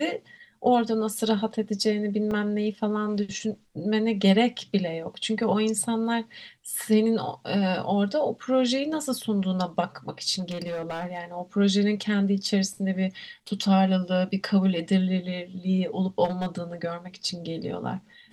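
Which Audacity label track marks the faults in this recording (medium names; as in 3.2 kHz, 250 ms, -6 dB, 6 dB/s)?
2.310000	2.310000	dropout 3.6 ms
10.390000	11.190000	clipped -27.5 dBFS
16.240000	16.590000	clipped -23 dBFS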